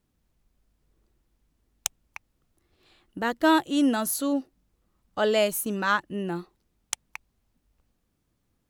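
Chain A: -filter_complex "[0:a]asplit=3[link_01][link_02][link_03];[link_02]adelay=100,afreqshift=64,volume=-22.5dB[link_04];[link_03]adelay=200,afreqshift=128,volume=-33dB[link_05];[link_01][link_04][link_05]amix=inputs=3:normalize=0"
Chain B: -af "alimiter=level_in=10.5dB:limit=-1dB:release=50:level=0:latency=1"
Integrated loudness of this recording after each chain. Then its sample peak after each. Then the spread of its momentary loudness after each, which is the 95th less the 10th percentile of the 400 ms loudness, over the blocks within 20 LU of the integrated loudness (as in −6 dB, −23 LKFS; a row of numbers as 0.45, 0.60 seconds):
−26.5, −16.5 LKFS; −5.0, −1.0 dBFS; 15, 18 LU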